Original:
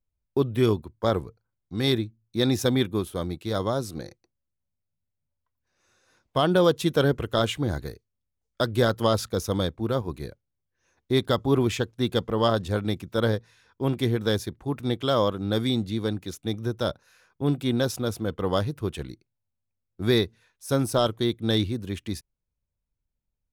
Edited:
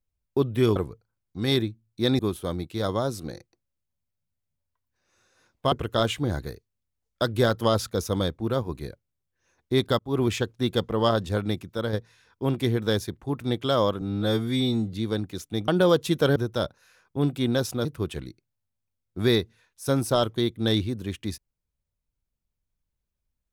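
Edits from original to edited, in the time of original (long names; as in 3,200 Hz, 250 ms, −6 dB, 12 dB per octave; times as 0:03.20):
0:00.76–0:01.12: remove
0:02.55–0:02.90: remove
0:06.43–0:07.11: move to 0:16.61
0:11.38–0:11.64: fade in
0:12.87–0:13.32: fade out, to −7 dB
0:15.40–0:15.86: time-stretch 2×
0:18.10–0:18.68: remove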